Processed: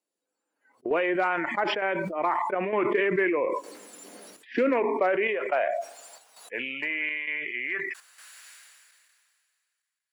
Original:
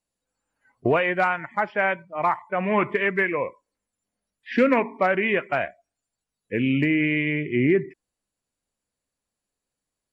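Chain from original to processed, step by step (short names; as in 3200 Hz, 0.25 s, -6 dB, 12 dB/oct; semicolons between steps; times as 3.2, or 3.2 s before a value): high-pass sweep 340 Hz -> 1700 Hz, 4.54–8.46; compressor 3:1, threshold -19 dBFS, peak gain reduction 6.5 dB; chopper 1.1 Hz, depth 60%, duty 80%; sustainer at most 26 dB/s; gain -3.5 dB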